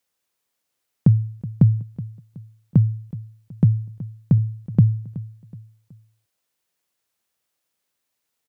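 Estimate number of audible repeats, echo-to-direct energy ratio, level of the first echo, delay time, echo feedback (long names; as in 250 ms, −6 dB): 3, −16.5 dB, −17.0 dB, 373 ms, 39%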